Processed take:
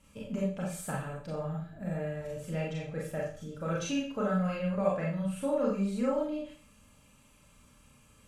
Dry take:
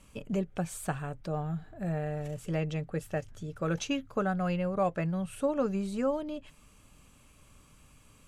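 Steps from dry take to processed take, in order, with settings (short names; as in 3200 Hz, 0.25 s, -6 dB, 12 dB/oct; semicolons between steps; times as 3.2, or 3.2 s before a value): notch comb 370 Hz; Schroeder reverb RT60 0.44 s, combs from 29 ms, DRR -4 dB; gain -5 dB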